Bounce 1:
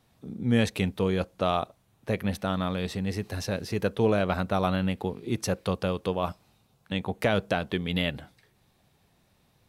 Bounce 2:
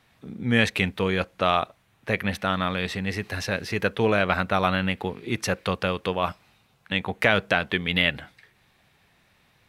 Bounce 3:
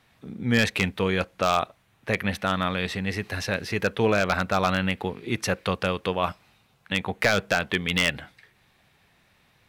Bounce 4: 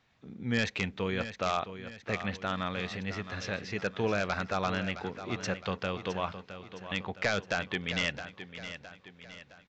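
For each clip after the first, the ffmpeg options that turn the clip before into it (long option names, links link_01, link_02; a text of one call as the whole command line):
ffmpeg -i in.wav -af "equalizer=frequency=2000:width=0.74:gain=11.5" out.wav
ffmpeg -i in.wav -af "aeval=exprs='0.335*(abs(mod(val(0)/0.335+3,4)-2)-1)':channel_layout=same" out.wav
ffmpeg -i in.wav -filter_complex "[0:a]asplit=2[link_01][link_02];[link_02]aecho=0:1:664|1328|1992|2656|3320:0.266|0.122|0.0563|0.0259|0.0119[link_03];[link_01][link_03]amix=inputs=2:normalize=0,aresample=16000,aresample=44100,volume=-8dB" out.wav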